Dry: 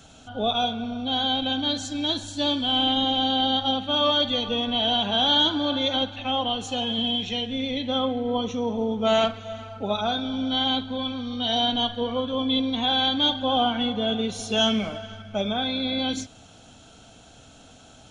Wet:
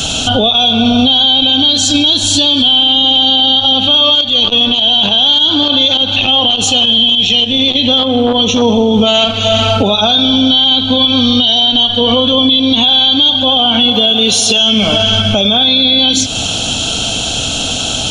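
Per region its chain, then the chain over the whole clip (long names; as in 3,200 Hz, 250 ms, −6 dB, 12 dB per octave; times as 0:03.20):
0:04.15–0:08.62: downward compressor 2.5 to 1, threshold −28 dBFS + square-wave tremolo 3.4 Hz, depth 60%, duty 20% + saturating transformer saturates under 820 Hz
0:13.93–0:14.61: low-shelf EQ 150 Hz −11.5 dB + floating-point word with a short mantissa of 6 bits
whole clip: high shelf with overshoot 2,400 Hz +6 dB, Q 3; downward compressor 10 to 1, threshold −30 dBFS; boost into a limiter +30 dB; level −1 dB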